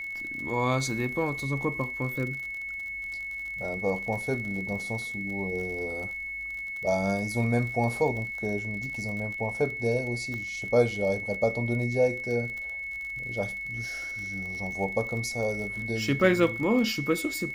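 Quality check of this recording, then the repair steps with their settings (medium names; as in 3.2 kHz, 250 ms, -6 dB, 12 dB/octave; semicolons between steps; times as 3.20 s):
crackle 49 per s -35 dBFS
whine 2.2 kHz -33 dBFS
10.34 s: pop -25 dBFS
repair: de-click; band-stop 2.2 kHz, Q 30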